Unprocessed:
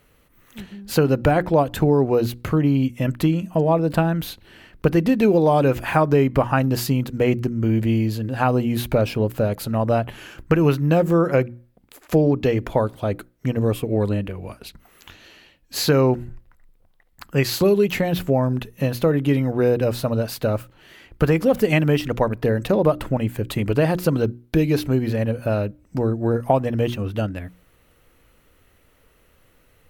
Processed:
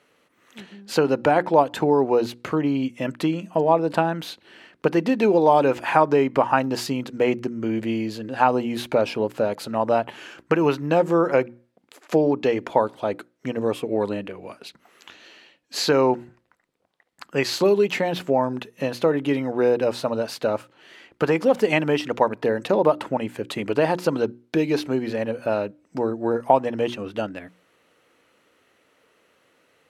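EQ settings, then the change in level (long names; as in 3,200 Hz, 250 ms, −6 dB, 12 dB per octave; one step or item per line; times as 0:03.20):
dynamic equaliser 900 Hz, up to +7 dB, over −42 dBFS, Q 5
high-pass filter 270 Hz 12 dB per octave
low-pass filter 7,800 Hz 12 dB per octave
0.0 dB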